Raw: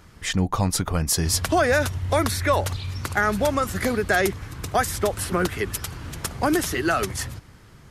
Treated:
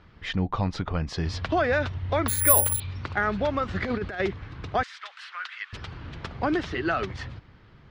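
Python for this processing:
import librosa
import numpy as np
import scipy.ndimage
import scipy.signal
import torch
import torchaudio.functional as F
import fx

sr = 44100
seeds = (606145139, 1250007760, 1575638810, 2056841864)

y = scipy.signal.sosfilt(scipy.signal.butter(4, 4000.0, 'lowpass', fs=sr, output='sos'), x)
y = fx.resample_bad(y, sr, factor=4, down='filtered', up='zero_stuff', at=(2.28, 2.8))
y = fx.over_compress(y, sr, threshold_db=-24.0, ratio=-0.5, at=(3.68, 4.2))
y = fx.highpass(y, sr, hz=1300.0, slope=24, at=(4.83, 5.73))
y = F.gain(torch.from_numpy(y), -4.0).numpy()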